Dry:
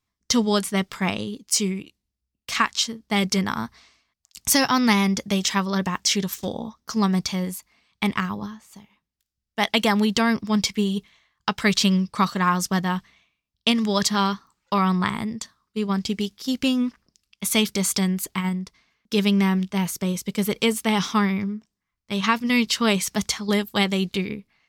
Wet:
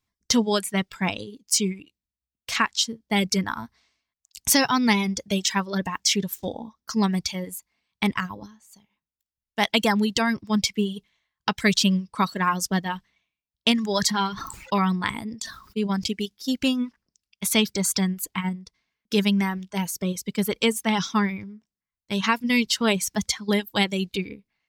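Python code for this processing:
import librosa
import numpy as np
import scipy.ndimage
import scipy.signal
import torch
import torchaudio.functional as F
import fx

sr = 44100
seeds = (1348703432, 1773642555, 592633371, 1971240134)

y = fx.sustainer(x, sr, db_per_s=50.0, at=(13.84, 16.12))
y = fx.dereverb_blind(y, sr, rt60_s=1.9)
y = fx.notch(y, sr, hz=1200.0, q=9.7)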